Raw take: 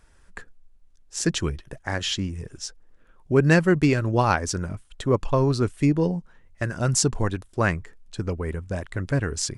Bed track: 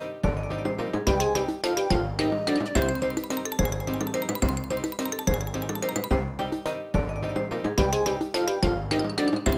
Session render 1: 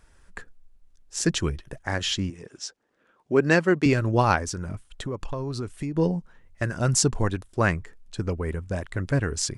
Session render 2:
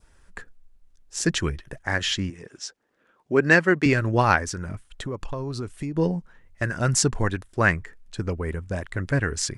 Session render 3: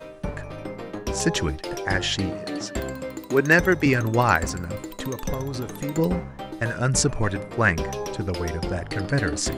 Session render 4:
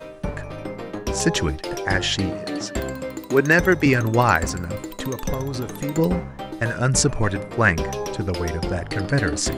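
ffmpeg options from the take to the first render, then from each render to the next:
-filter_complex "[0:a]asettb=1/sr,asplit=3[a][b][c];[a]atrim=end=2.304[d];[b]atrim=start=2.3:end=3.86,asetpts=PTS-STARTPTS,afade=t=in:d=0.004:c=qsin,afade=t=out:st=1.556:d=0.004:c=qsin,highpass=230,lowpass=7.5k[e];[c]atrim=start=3.856[f];[d][e]acrossfade=d=0.004:c1=hsin:c2=qsin[g];[g][f]acrossfade=d=0.004:c1=qsin:c2=hsin,asettb=1/sr,asplit=3[h][i][j];[h]atrim=end=4.424[k];[i]atrim=start=4.42:end=5.97,asetpts=PTS-STARTPTS,afade=t=in:d=0.004:c=qsin,afade=t=out:st=1.546:d=0.004:c=qsin,acompressor=threshold=-27dB:ratio=6:attack=3.2:release=140:knee=1:detection=peak[l];[j]atrim=start=5.966[m];[k][l]acrossfade=d=0.004:c1=hsin:c2=qsin[n];[n][m]acrossfade=d=0.004:c1=qsin:c2=hsin"
-af "adynamicequalizer=threshold=0.00891:dfrequency=1800:dqfactor=1.7:tfrequency=1800:tqfactor=1.7:attack=5:release=100:ratio=0.375:range=3.5:mode=boostabove:tftype=bell"
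-filter_complex "[1:a]volume=-6dB[a];[0:a][a]amix=inputs=2:normalize=0"
-af "volume=2.5dB,alimiter=limit=-3dB:level=0:latency=1"

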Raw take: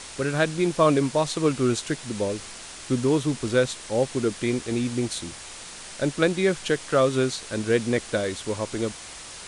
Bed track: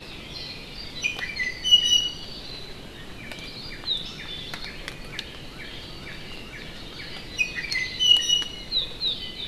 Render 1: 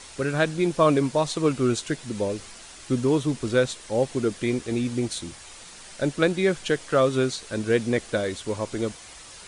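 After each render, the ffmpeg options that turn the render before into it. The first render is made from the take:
-af "afftdn=nr=6:nf=-41"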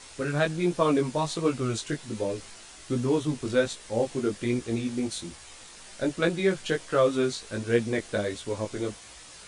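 -af "flanger=delay=16.5:depth=4:speed=1.3"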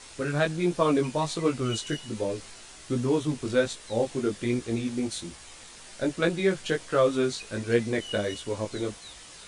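-filter_complex "[1:a]volume=-22.5dB[a];[0:a][a]amix=inputs=2:normalize=0"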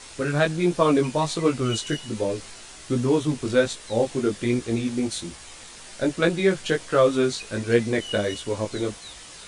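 -af "volume=4dB"

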